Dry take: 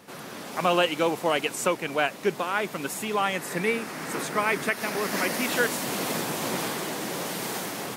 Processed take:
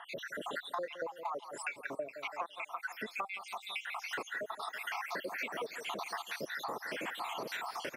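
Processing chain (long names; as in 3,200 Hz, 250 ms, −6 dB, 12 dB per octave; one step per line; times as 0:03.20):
time-frequency cells dropped at random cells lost 78%
three-way crossover with the lows and the highs turned down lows −14 dB, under 420 Hz, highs −15 dB, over 3,700 Hz
notch filter 780 Hz, Q 25
repeating echo 166 ms, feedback 48%, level −16.5 dB
downward compressor 12 to 1, threshold −45 dBFS, peak gain reduction 22 dB
level +9 dB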